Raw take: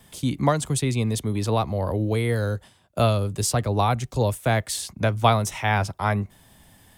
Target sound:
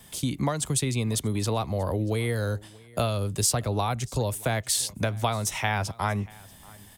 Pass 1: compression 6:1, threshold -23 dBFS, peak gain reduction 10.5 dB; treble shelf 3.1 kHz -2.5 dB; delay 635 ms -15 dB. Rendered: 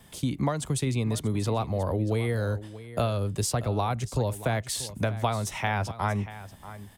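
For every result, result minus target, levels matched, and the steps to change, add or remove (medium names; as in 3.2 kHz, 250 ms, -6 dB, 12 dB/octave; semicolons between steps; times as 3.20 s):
echo-to-direct +8.5 dB; 8 kHz band -5.5 dB
change: delay 635 ms -23.5 dB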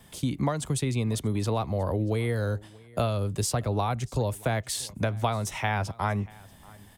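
8 kHz band -5.5 dB
change: treble shelf 3.1 kHz +5.5 dB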